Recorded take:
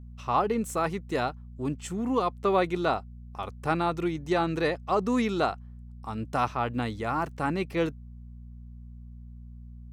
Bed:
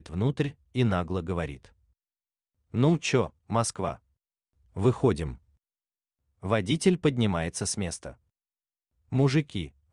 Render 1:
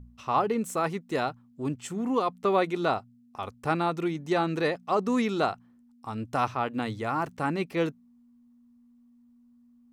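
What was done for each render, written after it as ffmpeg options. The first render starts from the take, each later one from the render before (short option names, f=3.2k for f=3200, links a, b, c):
-af "bandreject=f=60:t=h:w=4,bandreject=f=120:t=h:w=4,bandreject=f=180:t=h:w=4"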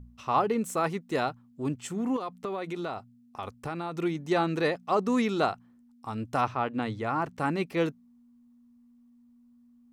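-filter_complex "[0:a]asettb=1/sr,asplit=3[a][b][c];[a]atrim=end=2.164[d];[b]atrim=start=2.16:end=3.98,asetpts=PTS-STARTPTS,afade=t=in:d=0.004:c=qsin,afade=t=out:st=1.816:d=0.004:c=qsin,acompressor=threshold=-30dB:ratio=6:attack=3.2:release=140:knee=1:detection=peak[e];[c]atrim=start=3.976[f];[d][e]acrossfade=d=0.004:c1=hsin:c2=qsin[g];[g][f]acrossfade=d=0.004:c1=qsin:c2=hsin,asettb=1/sr,asplit=3[h][i][j];[h]atrim=end=6.414[k];[i]atrim=start=6.41:end=7.36,asetpts=PTS-STARTPTS,afade=t=in:d=0.004:c=qsin,afade=t=out:st=0.946:d=0.004:c=qsin,highshelf=f=5.8k:g=-10.5[l];[j]atrim=start=7.356[m];[k][l]acrossfade=d=0.004:c1=hsin:c2=qsin[n];[n][m]acrossfade=d=0.004:c1=qsin:c2=hsin"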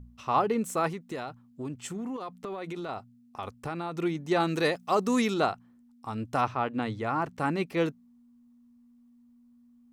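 -filter_complex "[0:a]asettb=1/sr,asplit=3[a][b][c];[a]atrim=end=0.914[d];[b]atrim=start=0.91:end=2.89,asetpts=PTS-STARTPTS,afade=t=in:d=0.004:c=qsin,afade=t=out:st=1.976:d=0.004:c=qsin,acompressor=threshold=-32dB:ratio=5:attack=3.2:release=140:knee=1:detection=peak[e];[c]atrim=start=2.886[f];[d][e]acrossfade=d=0.004:c1=hsin:c2=qsin[g];[g][f]acrossfade=d=0.004:c1=qsin:c2=hsin,asettb=1/sr,asplit=3[h][i][j];[h]atrim=end=4.404[k];[i]atrim=start=4.4:end=5.34,asetpts=PTS-STARTPTS,afade=t=in:d=0.004:c=qsin,afade=t=out:st=0.936:d=0.004:c=qsin,highshelf=f=4.7k:g=11[l];[j]atrim=start=5.336[m];[k][l]acrossfade=d=0.004:c1=hsin:c2=qsin[n];[n][m]acrossfade=d=0.004:c1=qsin:c2=hsin"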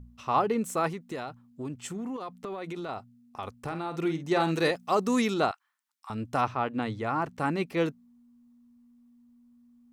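-filter_complex "[0:a]asettb=1/sr,asplit=3[a][b][c];[a]atrim=end=3.634[d];[b]atrim=start=3.63:end=4.71,asetpts=PTS-STARTPTS,afade=t=in:d=0.004:c=qsin,afade=t=out:st=1.076:d=0.004:c=qsin,asplit=2[e][f];[f]adelay=49,volume=-9.5dB[g];[e][g]amix=inputs=2:normalize=0,atrim=end_sample=47628[h];[c]atrim=start=4.706[i];[d][h]acrossfade=d=0.004:c1=hsin:c2=qsin[j];[j][i]acrossfade=d=0.004:c1=qsin:c2=hsin,asettb=1/sr,asplit=3[k][l][m];[k]atrim=end=5.514[n];[l]atrim=start=5.51:end=6.1,asetpts=PTS-STARTPTS,afade=t=in:d=0.004:c=qsin,afade=t=out:st=0.586:d=0.004:c=qsin,highpass=f=1.1k:w=0.5412,highpass=f=1.1k:w=1.3066[o];[m]atrim=start=6.096[p];[n][o]acrossfade=d=0.004:c1=hsin:c2=qsin[q];[q][p]acrossfade=d=0.004:c1=qsin:c2=hsin"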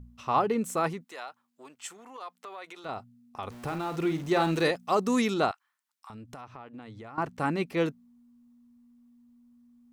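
-filter_complex "[0:a]asplit=3[a][b][c];[a]afade=t=out:st=1.03:d=0.02[d];[b]highpass=760,afade=t=in:st=1.03:d=0.02,afade=t=out:st=2.84:d=0.02[e];[c]afade=t=in:st=2.84:d=0.02[f];[d][e][f]amix=inputs=3:normalize=0,asettb=1/sr,asplit=3[g][h][i];[g]atrim=end=3.504[j];[h]atrim=start=3.5:end=4.63,asetpts=PTS-STARTPTS,afade=t=in:d=0.004:c=qsin,afade=t=out:st=1.126:d=0.004:c=qsin,aeval=exprs='val(0)+0.5*0.00841*sgn(val(0))':c=same[k];[i]atrim=start=4.626[l];[j][k]acrossfade=d=0.004:c1=hsin:c2=qsin[m];[m][l]acrossfade=d=0.004:c1=qsin:c2=hsin,asettb=1/sr,asplit=3[n][o][p];[n]atrim=end=5.514[q];[o]atrim=start=5.51:end=7.18,asetpts=PTS-STARTPTS,afade=t=in:d=0.004:c=qsin,afade=t=out:st=1.666:d=0.004:c=qsin,acompressor=threshold=-42dB:ratio=6:attack=3.2:release=140:knee=1:detection=peak[r];[p]atrim=start=7.176[s];[q][r]acrossfade=d=0.004:c1=hsin:c2=qsin[t];[t][s]acrossfade=d=0.004:c1=qsin:c2=hsin"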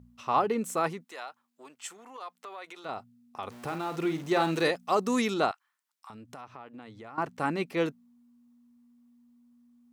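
-af "highpass=f=190:p=1"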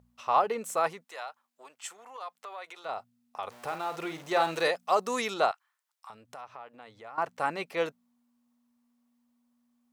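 -af "lowshelf=f=410:t=q:w=1.5:g=-9"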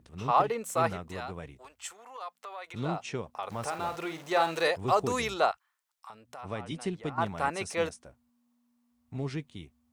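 -filter_complex "[1:a]volume=-11.5dB[a];[0:a][a]amix=inputs=2:normalize=0"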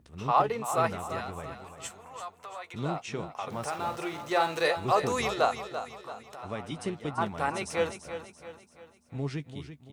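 -filter_complex "[0:a]asplit=2[a][b];[b]adelay=14,volume=-12dB[c];[a][c]amix=inputs=2:normalize=0,aecho=1:1:338|676|1014|1352|1690:0.299|0.137|0.0632|0.0291|0.0134"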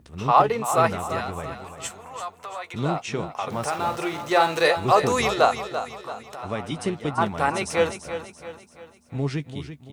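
-af "volume=7dB"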